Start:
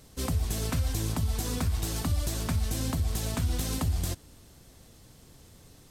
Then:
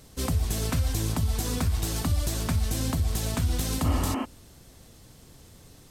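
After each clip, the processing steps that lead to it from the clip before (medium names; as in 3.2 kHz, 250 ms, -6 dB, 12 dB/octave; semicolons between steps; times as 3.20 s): spectral replace 3.87–4.22 s, 220–3200 Hz before; trim +2.5 dB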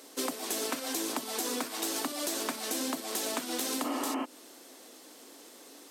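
elliptic high-pass 270 Hz, stop band 70 dB; compression, threshold -34 dBFS, peak gain reduction 6.5 dB; trim +4.5 dB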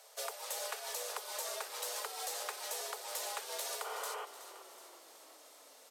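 high-pass 350 Hz 24 dB/octave; frequency shift +160 Hz; frequency-shifting echo 373 ms, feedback 58%, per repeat -36 Hz, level -13 dB; trim -6.5 dB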